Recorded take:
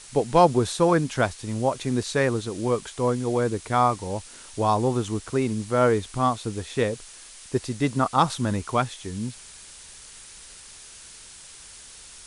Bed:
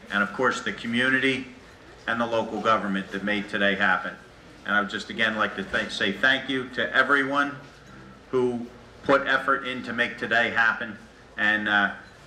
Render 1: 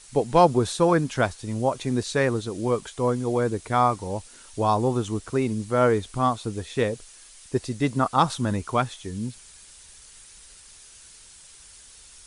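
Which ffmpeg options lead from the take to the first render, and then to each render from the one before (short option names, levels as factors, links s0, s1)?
-af "afftdn=nr=6:nf=-46"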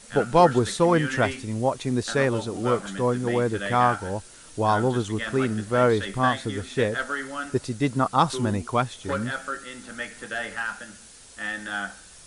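-filter_complex "[1:a]volume=0.355[s0];[0:a][s0]amix=inputs=2:normalize=0"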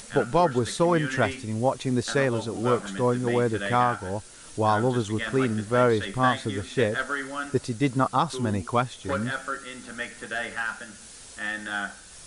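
-af "alimiter=limit=0.299:level=0:latency=1:release=432,acompressor=mode=upward:threshold=0.0112:ratio=2.5"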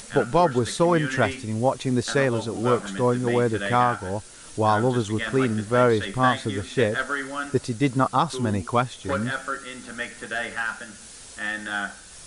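-af "volume=1.26"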